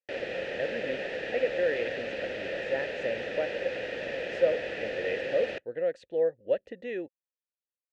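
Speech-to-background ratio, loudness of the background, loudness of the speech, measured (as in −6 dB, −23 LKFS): 2.0 dB, −34.5 LKFS, −32.5 LKFS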